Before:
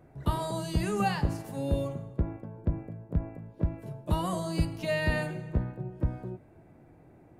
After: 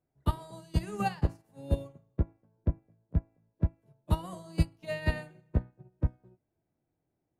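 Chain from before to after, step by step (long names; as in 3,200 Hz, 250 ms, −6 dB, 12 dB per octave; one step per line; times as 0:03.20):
expander for the loud parts 2.5 to 1, over −41 dBFS
level +3 dB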